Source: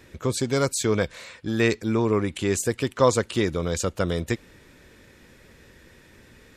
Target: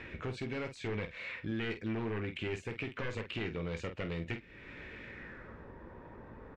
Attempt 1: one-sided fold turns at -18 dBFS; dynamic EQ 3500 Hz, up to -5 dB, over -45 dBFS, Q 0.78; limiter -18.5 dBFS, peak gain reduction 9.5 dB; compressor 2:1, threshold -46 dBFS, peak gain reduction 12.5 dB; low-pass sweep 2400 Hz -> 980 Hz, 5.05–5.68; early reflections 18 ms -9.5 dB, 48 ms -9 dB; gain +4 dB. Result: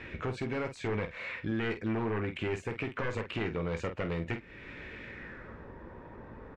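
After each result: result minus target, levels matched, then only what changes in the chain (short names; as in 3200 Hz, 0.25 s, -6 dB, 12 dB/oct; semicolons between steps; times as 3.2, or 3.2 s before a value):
4000 Hz band -3.5 dB; compressor: peak gain reduction -3.5 dB
change: dynamic EQ 1000 Hz, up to -5 dB, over -45 dBFS, Q 0.78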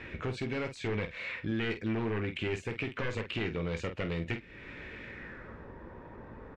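compressor: peak gain reduction -4 dB
change: compressor 2:1, threshold -53.5 dBFS, peak gain reduction 16 dB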